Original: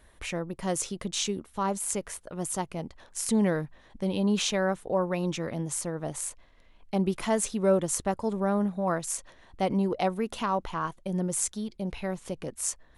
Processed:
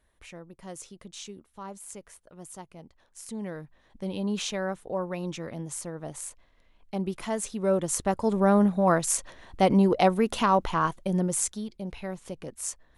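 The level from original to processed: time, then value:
0:03.37 −12 dB
0:04.06 −4 dB
0:07.46 −4 dB
0:08.48 +6 dB
0:10.92 +6 dB
0:11.83 −3 dB

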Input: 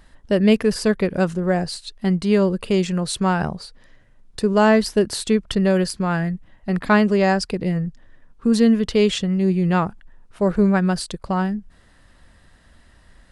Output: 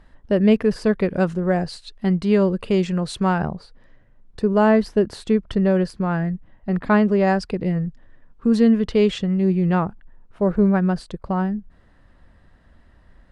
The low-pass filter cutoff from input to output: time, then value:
low-pass filter 6 dB per octave
1,700 Hz
from 0:00.95 2,800 Hz
from 0:03.38 1,300 Hz
from 0:07.27 2,100 Hz
from 0:09.75 1,200 Hz

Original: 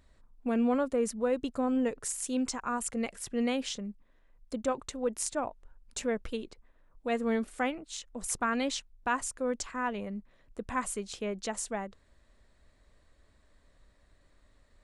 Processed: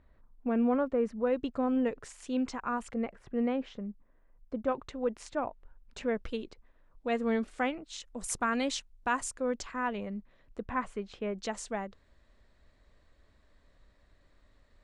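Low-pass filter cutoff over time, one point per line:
2,000 Hz
from 0:01.27 3,400 Hz
from 0:02.94 1,500 Hz
from 0:04.67 3,100 Hz
from 0:06.15 5,600 Hz
from 0:08.00 10,000 Hz
from 0:09.38 5,200 Hz
from 0:10.60 2,400 Hz
from 0:11.38 5,800 Hz

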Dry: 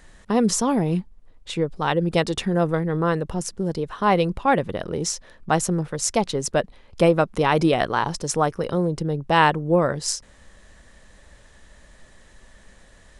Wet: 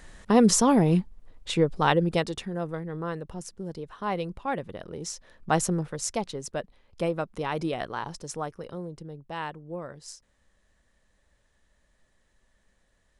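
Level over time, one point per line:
0:01.87 +1 dB
0:02.48 −11 dB
0:05.00 −11 dB
0:05.60 −2.5 dB
0:06.43 −11 dB
0:08.18 −11 dB
0:09.39 −18 dB

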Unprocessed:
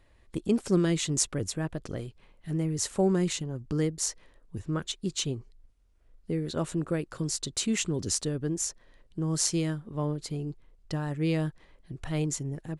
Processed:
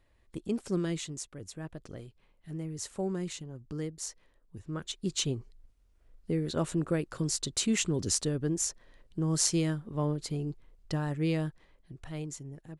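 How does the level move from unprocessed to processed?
0:00.98 −6.5 dB
0:01.25 −15.5 dB
0:01.66 −8.5 dB
0:04.61 −8.5 dB
0:05.13 0 dB
0:11.04 0 dB
0:12.28 −9.5 dB

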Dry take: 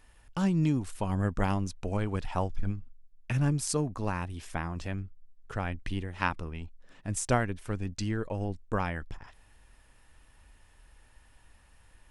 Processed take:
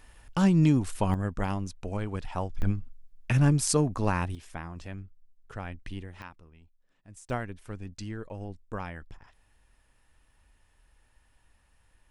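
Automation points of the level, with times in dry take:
+5 dB
from 0:01.14 −2 dB
from 0:02.62 +5 dB
from 0:04.35 −5 dB
from 0:06.22 −17 dB
from 0:07.30 −6 dB

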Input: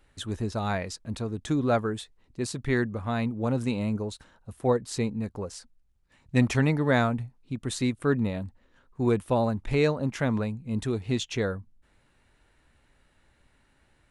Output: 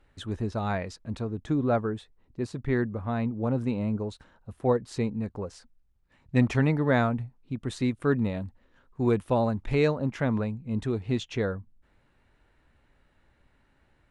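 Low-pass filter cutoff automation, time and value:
low-pass filter 6 dB per octave
2,500 Hz
from 0:01.25 1,300 Hz
from 0:04.00 2,500 Hz
from 0:07.91 4,400 Hz
from 0:09.95 2,400 Hz

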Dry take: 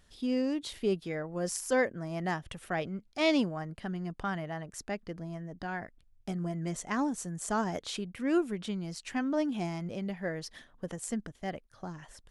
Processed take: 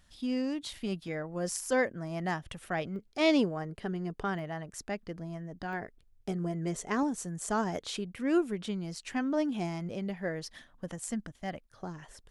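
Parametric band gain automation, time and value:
parametric band 420 Hz 0.42 octaves
−12.5 dB
from 0:01.08 −2 dB
from 0:02.96 +10 dB
from 0:04.39 0 dB
from 0:05.73 +9.5 dB
from 0:07.03 +2 dB
from 0:10.48 −7 dB
from 0:11.69 +5 dB

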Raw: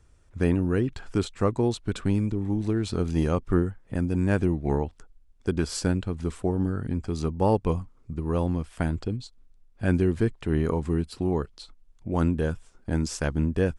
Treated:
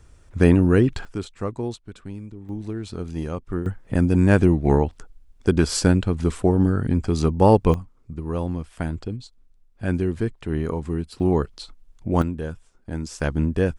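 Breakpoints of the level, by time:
+8 dB
from 0:01.05 −4 dB
from 0:01.76 −11 dB
from 0:02.49 −4.5 dB
from 0:03.66 +7.5 dB
from 0:07.74 −0.5 dB
from 0:11.20 +6 dB
from 0:12.22 −3.5 dB
from 0:13.20 +3 dB

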